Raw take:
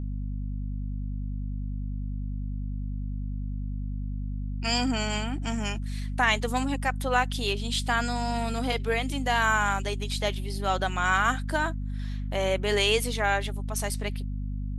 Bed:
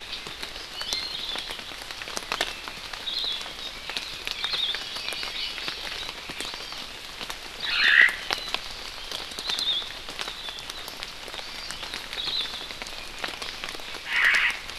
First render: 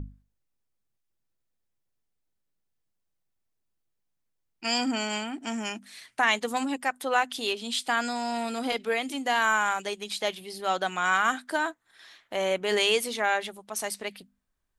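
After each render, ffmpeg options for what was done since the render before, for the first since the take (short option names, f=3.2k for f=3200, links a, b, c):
-af "bandreject=f=50:t=h:w=6,bandreject=f=100:t=h:w=6,bandreject=f=150:t=h:w=6,bandreject=f=200:t=h:w=6,bandreject=f=250:t=h:w=6"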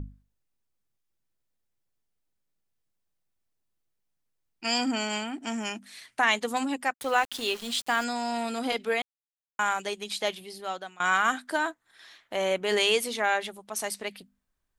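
-filter_complex "[0:a]asplit=3[a][b][c];[a]afade=t=out:st=6.92:d=0.02[d];[b]aeval=exprs='val(0)*gte(abs(val(0)),0.0126)':c=same,afade=t=in:st=6.92:d=0.02,afade=t=out:st=8.03:d=0.02[e];[c]afade=t=in:st=8.03:d=0.02[f];[d][e][f]amix=inputs=3:normalize=0,asplit=4[g][h][i][j];[g]atrim=end=9.02,asetpts=PTS-STARTPTS,afade=t=out:st=9.016:d=0.004:c=hsin[k];[h]atrim=start=9.02:end=9.59,asetpts=PTS-STARTPTS,volume=0[l];[i]atrim=start=9.59:end=11,asetpts=PTS-STARTPTS,afade=t=in:d=0.004:c=hsin,afade=t=out:st=0.72:d=0.69:silence=0.0668344[m];[j]atrim=start=11,asetpts=PTS-STARTPTS,afade=t=in:d=0.004:c=hsin:silence=0.0668344[n];[k][l][m][n]concat=n=4:v=0:a=1"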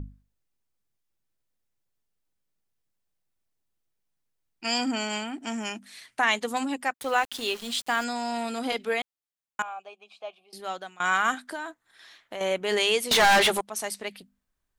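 -filter_complex "[0:a]asettb=1/sr,asplit=3[a][b][c];[a]atrim=end=9.624[d];[b]atrim=start=9.62:end=10.53,asetpts=PTS-STARTPTS,afade=t=in:d=0.004:c=qsin,afade=t=out:st=0.906:d=0.004:c=qsin,asplit=3[e][f][g];[e]bandpass=f=730:t=q:w=8,volume=0dB[h];[f]bandpass=f=1.09k:t=q:w=8,volume=-6dB[i];[g]bandpass=f=2.44k:t=q:w=8,volume=-9dB[j];[h][i][j]amix=inputs=3:normalize=0[k];[c]atrim=start=10.526[l];[d][k]acrossfade=d=0.004:c1=hsin:c2=qsin[m];[m][l]acrossfade=d=0.004:c1=qsin:c2=hsin,asettb=1/sr,asplit=3[n][o][p];[n]atrim=end=11.344[q];[o]atrim=start=11.34:end=12.41,asetpts=PTS-STARTPTS,afade=t=in:d=0.004:c=qsin,afade=t=out:st=1.066:d=0.004:c=qsin,acompressor=threshold=-33dB:ratio=3:attack=3.2:release=140:knee=1:detection=peak[r];[p]atrim=start=12.406[s];[q][r]acrossfade=d=0.004:c1=hsin:c2=qsin[t];[t][s]acrossfade=d=0.004:c1=qsin:c2=hsin,asettb=1/sr,asplit=3[u][v][w];[u]atrim=end=13.114[x];[v]atrim=start=13.11:end=13.61,asetpts=PTS-STARTPTS,afade=t=in:d=0.004:c=qsin,afade=t=out:st=0.496:d=0.004:c=qsin,asplit=2[y][z];[z]highpass=f=720:p=1,volume=32dB,asoftclip=type=tanh:threshold=-12dB[aa];[y][aa]amix=inputs=2:normalize=0,lowpass=f=6.7k:p=1,volume=-6dB[ab];[w]atrim=start=13.606[ac];[x][ab]acrossfade=d=0.004:c1=hsin:c2=qsin[ad];[ad][ac]acrossfade=d=0.004:c1=qsin:c2=hsin"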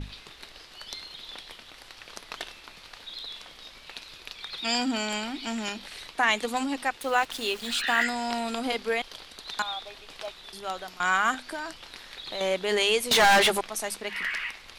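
-filter_complex "[1:a]volume=-10.5dB[a];[0:a][a]amix=inputs=2:normalize=0"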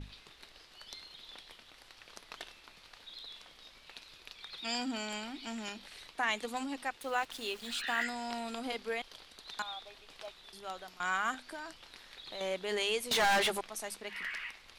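-af "volume=-9dB"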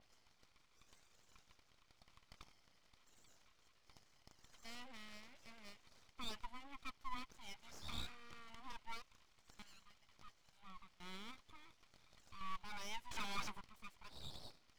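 -filter_complex "[0:a]asplit=3[a][b][c];[a]bandpass=f=530:t=q:w=8,volume=0dB[d];[b]bandpass=f=1.84k:t=q:w=8,volume=-6dB[e];[c]bandpass=f=2.48k:t=q:w=8,volume=-9dB[f];[d][e][f]amix=inputs=3:normalize=0,aeval=exprs='abs(val(0))':c=same"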